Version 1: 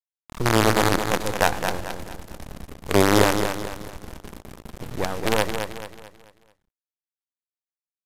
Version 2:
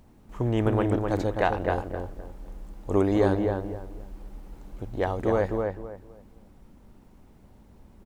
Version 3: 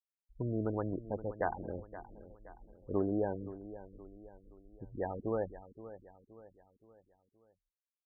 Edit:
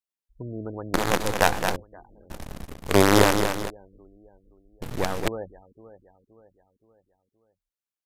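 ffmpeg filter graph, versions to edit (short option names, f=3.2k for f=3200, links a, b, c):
-filter_complex "[0:a]asplit=3[a][b][c];[2:a]asplit=4[d][e][f][g];[d]atrim=end=0.942[h];[a]atrim=start=0.938:end=1.762[i];[e]atrim=start=1.758:end=2.302[j];[b]atrim=start=2.298:end=3.702[k];[f]atrim=start=3.698:end=4.822[l];[c]atrim=start=4.818:end=5.282[m];[g]atrim=start=5.278[n];[h][i]acrossfade=d=0.004:c1=hsin:c2=hsin[o];[o][j]acrossfade=d=0.004:c1=hsin:c2=hsin[p];[p][k]acrossfade=d=0.004:c1=hsin:c2=hsin[q];[q][l]acrossfade=d=0.004:c1=hsin:c2=hsin[r];[r][m]acrossfade=d=0.004:c1=hsin:c2=hsin[s];[s][n]acrossfade=d=0.004:c1=hsin:c2=hsin"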